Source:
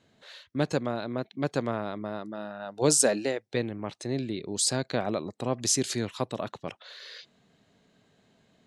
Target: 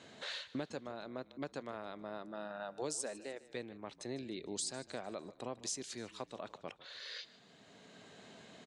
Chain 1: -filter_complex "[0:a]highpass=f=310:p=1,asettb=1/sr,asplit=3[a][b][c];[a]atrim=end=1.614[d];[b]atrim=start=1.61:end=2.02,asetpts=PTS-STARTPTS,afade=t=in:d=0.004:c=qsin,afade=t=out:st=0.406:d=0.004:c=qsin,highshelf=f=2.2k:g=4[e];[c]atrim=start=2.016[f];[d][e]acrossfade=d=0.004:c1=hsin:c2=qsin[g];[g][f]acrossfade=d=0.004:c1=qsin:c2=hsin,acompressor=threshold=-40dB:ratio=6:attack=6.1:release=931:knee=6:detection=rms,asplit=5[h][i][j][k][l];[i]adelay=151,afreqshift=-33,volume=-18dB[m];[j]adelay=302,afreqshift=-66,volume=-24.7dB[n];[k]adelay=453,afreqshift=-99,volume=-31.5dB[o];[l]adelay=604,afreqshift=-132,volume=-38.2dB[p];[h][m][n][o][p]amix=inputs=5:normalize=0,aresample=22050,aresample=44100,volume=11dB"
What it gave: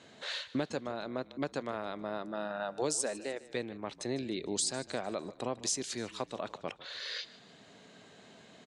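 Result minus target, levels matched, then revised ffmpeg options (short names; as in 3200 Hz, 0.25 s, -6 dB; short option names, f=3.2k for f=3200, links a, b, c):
compressor: peak gain reduction -7 dB
-filter_complex "[0:a]highpass=f=310:p=1,asettb=1/sr,asplit=3[a][b][c];[a]atrim=end=1.614[d];[b]atrim=start=1.61:end=2.02,asetpts=PTS-STARTPTS,afade=t=in:d=0.004:c=qsin,afade=t=out:st=0.406:d=0.004:c=qsin,highshelf=f=2.2k:g=4[e];[c]atrim=start=2.016[f];[d][e]acrossfade=d=0.004:c1=hsin:c2=qsin[g];[g][f]acrossfade=d=0.004:c1=qsin:c2=hsin,acompressor=threshold=-48.5dB:ratio=6:attack=6.1:release=931:knee=6:detection=rms,asplit=5[h][i][j][k][l];[i]adelay=151,afreqshift=-33,volume=-18dB[m];[j]adelay=302,afreqshift=-66,volume=-24.7dB[n];[k]adelay=453,afreqshift=-99,volume=-31.5dB[o];[l]adelay=604,afreqshift=-132,volume=-38.2dB[p];[h][m][n][o][p]amix=inputs=5:normalize=0,aresample=22050,aresample=44100,volume=11dB"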